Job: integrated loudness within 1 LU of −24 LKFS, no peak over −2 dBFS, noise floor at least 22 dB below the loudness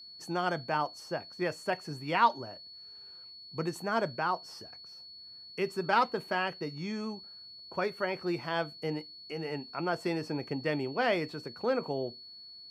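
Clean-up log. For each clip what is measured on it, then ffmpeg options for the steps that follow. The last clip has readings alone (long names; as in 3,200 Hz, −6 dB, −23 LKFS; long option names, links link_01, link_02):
interfering tone 4,400 Hz; level of the tone −47 dBFS; integrated loudness −33.0 LKFS; sample peak −12.0 dBFS; target loudness −24.0 LKFS
→ -af "bandreject=frequency=4400:width=30"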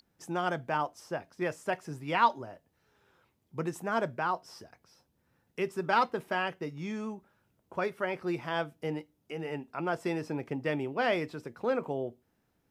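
interfering tone none found; integrated loudness −33.0 LKFS; sample peak −12.0 dBFS; target loudness −24.0 LKFS
→ -af "volume=9dB"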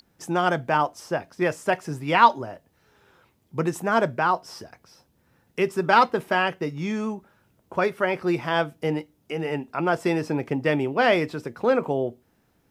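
integrated loudness −24.0 LKFS; sample peak −3.0 dBFS; background noise floor −66 dBFS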